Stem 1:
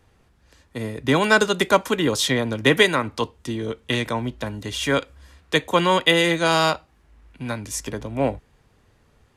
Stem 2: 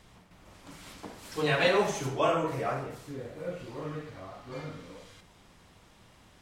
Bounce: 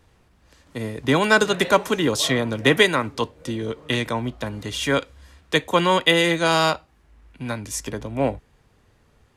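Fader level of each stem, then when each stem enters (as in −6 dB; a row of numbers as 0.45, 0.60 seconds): 0.0, −9.5 decibels; 0.00, 0.00 seconds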